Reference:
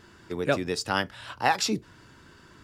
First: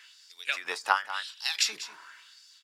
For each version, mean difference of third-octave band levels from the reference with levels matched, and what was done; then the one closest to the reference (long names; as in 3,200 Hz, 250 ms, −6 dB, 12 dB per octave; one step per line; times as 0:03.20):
13.5 dB: auto-filter high-pass sine 0.92 Hz 860–4,900 Hz
single-tap delay 193 ms −15 dB
every ending faded ahead of time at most 190 dB per second
level +2.5 dB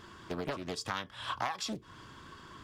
7.0 dB: downward compressor 12 to 1, threshold −33 dBFS, peak gain reduction 16.5 dB
hollow resonant body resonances 1,100/3,300 Hz, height 15 dB, ringing for 45 ms
highs frequency-modulated by the lows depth 0.67 ms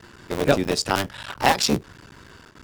3.5 dB: sub-harmonics by changed cycles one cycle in 3, muted
dynamic equaliser 1,500 Hz, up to −4 dB, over −37 dBFS, Q 0.9
noise gate with hold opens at −43 dBFS
level +8 dB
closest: third